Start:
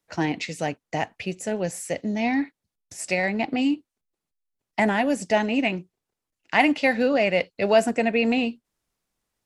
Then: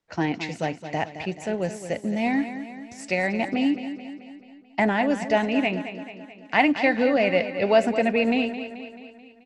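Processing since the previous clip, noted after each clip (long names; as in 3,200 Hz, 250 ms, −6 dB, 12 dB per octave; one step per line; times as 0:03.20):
high-frequency loss of the air 82 metres
on a send: repeating echo 217 ms, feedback 55%, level −11 dB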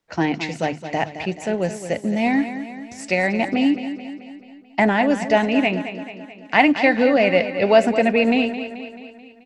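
mains-hum notches 50/100/150 Hz
level +4.5 dB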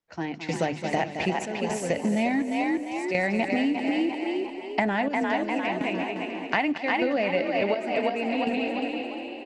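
gate pattern "..xxxx.xxx." 62 BPM −12 dB
on a send: echo with shifted repeats 350 ms, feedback 43%, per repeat +45 Hz, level −6 dB
on the sum: downward compressor 12 to 1, threshold −22 dBFS, peak gain reduction 14 dB
level +1 dB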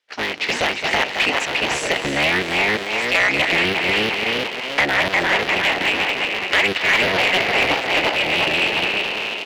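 sub-harmonics by changed cycles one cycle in 3, inverted
meter weighting curve D
mid-hump overdrive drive 15 dB, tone 2,900 Hz, clips at −6 dBFS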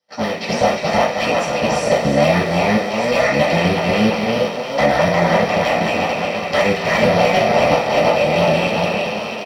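comb filter 1.6 ms, depth 45%
convolution reverb RT60 0.40 s, pre-delay 3 ms, DRR −5.5 dB
level −12 dB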